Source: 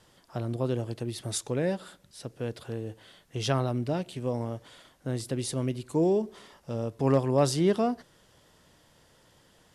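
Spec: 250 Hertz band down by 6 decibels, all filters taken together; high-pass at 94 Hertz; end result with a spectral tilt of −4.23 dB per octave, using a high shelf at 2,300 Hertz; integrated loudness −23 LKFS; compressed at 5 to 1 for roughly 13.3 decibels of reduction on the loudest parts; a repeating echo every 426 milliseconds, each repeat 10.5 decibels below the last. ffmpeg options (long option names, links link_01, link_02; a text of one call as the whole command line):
ffmpeg -i in.wav -af "highpass=94,equalizer=frequency=250:width_type=o:gain=-8.5,highshelf=frequency=2300:gain=5.5,acompressor=threshold=-35dB:ratio=5,aecho=1:1:426|852|1278:0.299|0.0896|0.0269,volume=17dB" out.wav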